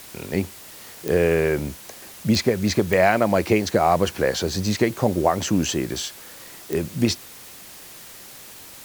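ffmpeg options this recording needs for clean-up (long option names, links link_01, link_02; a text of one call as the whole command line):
ffmpeg -i in.wav -af "adeclick=threshold=4,afftdn=noise_reduction=24:noise_floor=-42" out.wav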